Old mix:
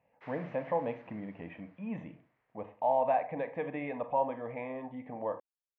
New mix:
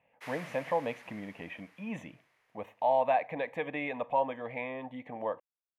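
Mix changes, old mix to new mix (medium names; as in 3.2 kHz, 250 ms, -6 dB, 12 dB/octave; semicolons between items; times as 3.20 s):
speech: send -11.5 dB; master: remove tape spacing loss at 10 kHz 41 dB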